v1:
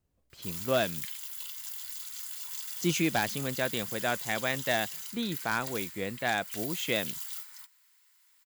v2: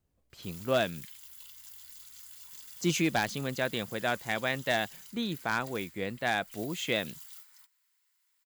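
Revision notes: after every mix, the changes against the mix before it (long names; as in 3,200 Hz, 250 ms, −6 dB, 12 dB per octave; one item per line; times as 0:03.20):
background −9.5 dB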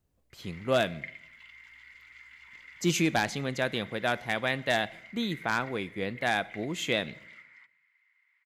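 background: add low-pass with resonance 2,100 Hz, resonance Q 13
reverb: on, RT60 0.75 s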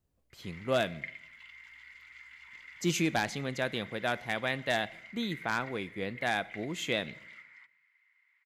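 speech −3.0 dB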